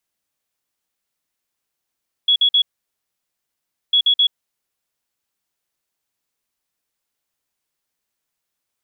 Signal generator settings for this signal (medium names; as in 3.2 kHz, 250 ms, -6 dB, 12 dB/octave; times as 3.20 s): beep pattern sine 3.36 kHz, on 0.08 s, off 0.05 s, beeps 3, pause 1.31 s, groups 2, -11 dBFS